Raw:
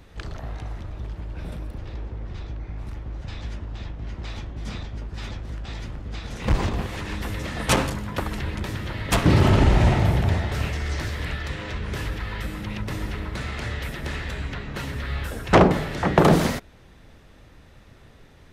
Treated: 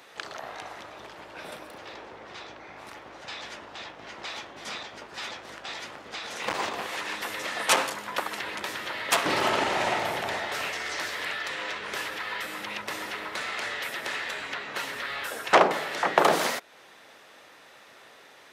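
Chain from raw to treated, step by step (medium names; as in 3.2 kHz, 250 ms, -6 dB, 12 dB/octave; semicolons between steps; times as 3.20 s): high-pass 610 Hz 12 dB/octave; in parallel at +0.5 dB: compression, threshold -41 dBFS, peak gain reduction 24.5 dB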